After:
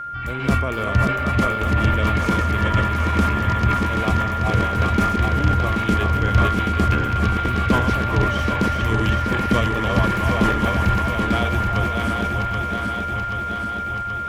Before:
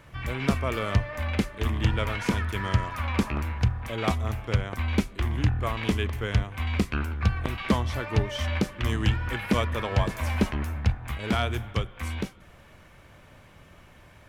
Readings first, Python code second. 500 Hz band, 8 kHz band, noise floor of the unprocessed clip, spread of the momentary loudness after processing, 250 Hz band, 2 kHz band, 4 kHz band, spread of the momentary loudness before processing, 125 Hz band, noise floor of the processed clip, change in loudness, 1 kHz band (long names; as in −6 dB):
+7.5 dB, +5.0 dB, −53 dBFS, 5 LU, +7.5 dB, +9.5 dB, +5.0 dB, 4 LU, +6.5 dB, −26 dBFS, +8.0 dB, +13.5 dB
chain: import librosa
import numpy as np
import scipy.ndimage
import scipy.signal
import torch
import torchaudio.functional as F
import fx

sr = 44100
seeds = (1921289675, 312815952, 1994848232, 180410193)

p1 = fx.reverse_delay_fb(x, sr, ms=390, feedback_pct=81, wet_db=-4.0)
p2 = fx.peak_eq(p1, sr, hz=240.0, db=4.0, octaves=2.6)
p3 = p2 + 10.0 ** (-28.0 / 20.0) * np.sin(2.0 * np.pi * 1400.0 * np.arange(len(p2)) / sr)
p4 = p3 + fx.echo_stepped(p3, sr, ms=386, hz=920.0, octaves=0.7, feedback_pct=70, wet_db=-2, dry=0)
y = fx.sustainer(p4, sr, db_per_s=49.0)